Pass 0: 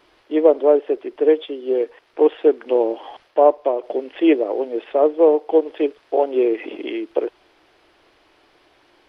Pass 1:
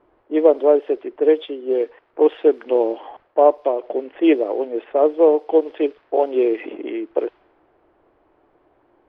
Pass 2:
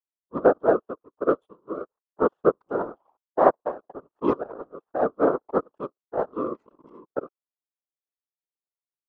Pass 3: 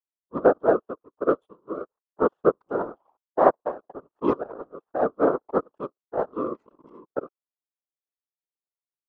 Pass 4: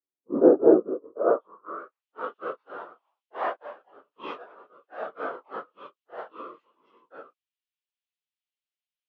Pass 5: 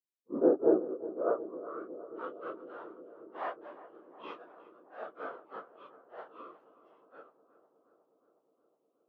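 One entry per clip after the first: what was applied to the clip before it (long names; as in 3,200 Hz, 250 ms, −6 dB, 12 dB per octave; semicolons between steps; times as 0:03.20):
low-pass that shuts in the quiet parts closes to 940 Hz, open at −11.5 dBFS
power curve on the samples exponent 2; random phases in short frames; high shelf with overshoot 1,600 Hz −10 dB, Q 3; level −2.5 dB
no processing that can be heard
random phases in long frames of 100 ms; band-pass filter sweep 340 Hz → 2,900 Hz, 0:00.89–0:02.07; level +8.5 dB
feedback echo with a low-pass in the loop 363 ms, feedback 81%, low-pass 1,400 Hz, level −15 dB; level −8.5 dB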